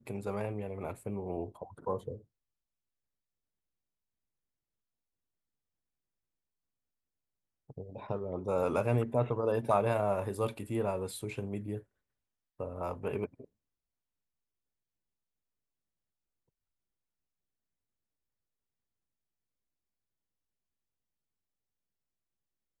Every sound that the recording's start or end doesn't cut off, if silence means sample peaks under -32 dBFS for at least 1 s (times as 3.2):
7.78–13.25